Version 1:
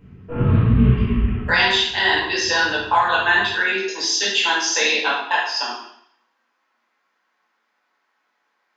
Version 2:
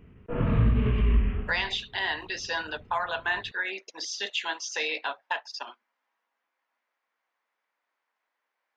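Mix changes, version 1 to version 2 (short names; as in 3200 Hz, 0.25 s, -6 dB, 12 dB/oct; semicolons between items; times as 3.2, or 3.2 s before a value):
speech -7.0 dB; reverb: off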